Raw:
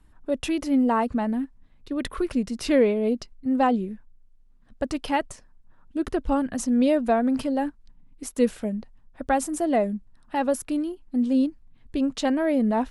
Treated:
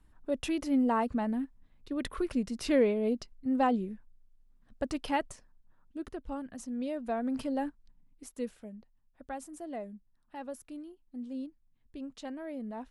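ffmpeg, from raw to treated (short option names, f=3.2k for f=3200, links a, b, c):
-af "volume=2dB,afade=t=out:st=5.26:d=0.9:silence=0.354813,afade=t=in:st=6.94:d=0.62:silence=0.398107,afade=t=out:st=7.56:d=1:silence=0.298538"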